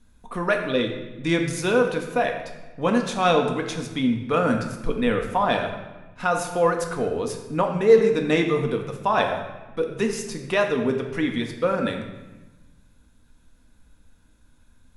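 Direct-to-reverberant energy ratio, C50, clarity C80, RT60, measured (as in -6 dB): 3.0 dB, 6.5 dB, 8.5 dB, 1.1 s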